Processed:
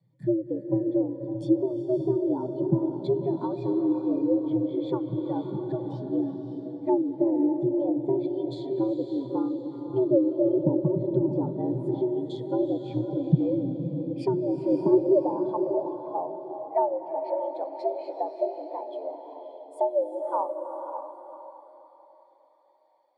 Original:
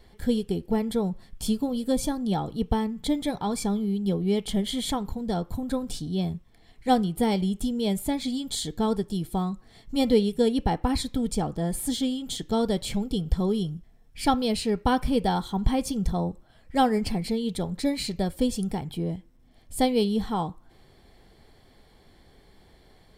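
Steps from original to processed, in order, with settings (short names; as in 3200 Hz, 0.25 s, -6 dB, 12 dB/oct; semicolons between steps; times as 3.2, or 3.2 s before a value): treble ducked by the level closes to 480 Hz, closed at -20 dBFS; frequency shift +110 Hz; non-linear reverb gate 0.42 s rising, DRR 6.5 dB; high-pass sweep 72 Hz -> 690 Hz, 14.3–15.32; on a send: diffused feedback echo 0.574 s, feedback 46%, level -4 dB; on the sum: spectral expander 1.5:1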